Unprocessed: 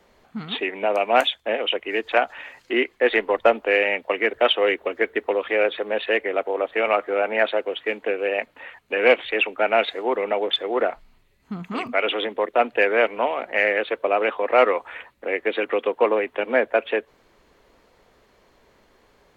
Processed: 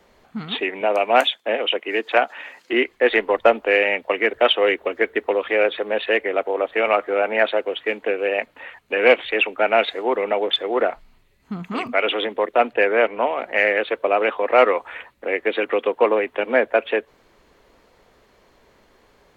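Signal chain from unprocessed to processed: 0.81–2.73 s: high-pass 190 Hz 24 dB/octave; 12.73–13.38 s: treble shelf 3.7 kHz -8.5 dB; trim +2 dB

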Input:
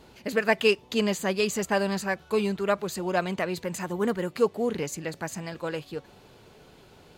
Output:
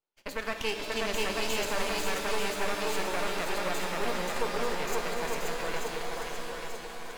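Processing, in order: high-pass 420 Hz 12 dB/octave; gate -50 dBFS, range -34 dB; half-wave rectifier; shuffle delay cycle 887 ms, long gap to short 1.5:1, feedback 44%, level -4 dB; peak limiter -18.5 dBFS, peak gain reduction 9 dB; pitch-shifted reverb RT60 2.9 s, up +7 st, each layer -2 dB, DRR 5.5 dB

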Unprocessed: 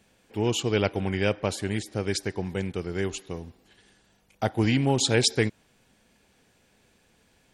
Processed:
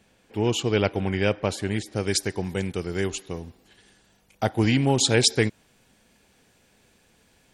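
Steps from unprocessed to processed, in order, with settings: treble shelf 6 kHz -3.5 dB, from 1.96 s +9.5 dB, from 3.07 s +3 dB; trim +2 dB

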